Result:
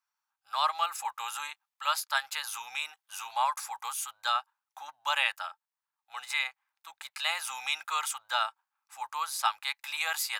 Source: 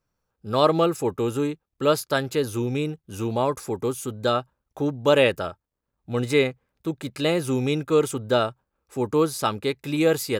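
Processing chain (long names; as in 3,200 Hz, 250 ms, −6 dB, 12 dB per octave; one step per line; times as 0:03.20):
elliptic high-pass filter 830 Hz, stop band 50 dB
speech leveller within 3 dB 0.5 s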